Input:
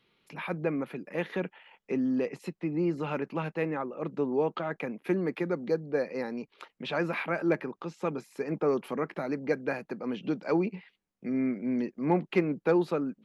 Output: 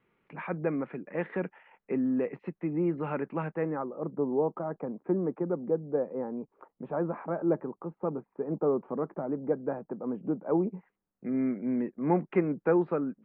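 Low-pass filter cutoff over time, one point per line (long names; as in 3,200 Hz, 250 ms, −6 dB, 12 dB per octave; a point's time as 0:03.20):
low-pass filter 24 dB per octave
0:03.43 2,100 Hz
0:04.01 1,100 Hz
0:10.68 1,100 Hz
0:11.28 1,900 Hz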